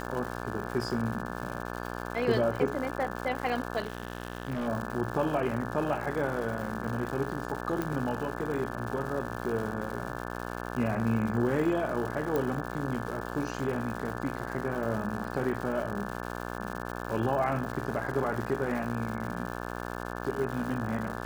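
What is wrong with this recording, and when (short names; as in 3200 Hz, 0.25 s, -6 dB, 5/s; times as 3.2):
buzz 60 Hz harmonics 29 -37 dBFS
crackle 260/s -36 dBFS
3.83–4.68 clipped -28 dBFS
7.82 pop -18 dBFS
12.36 pop -17 dBFS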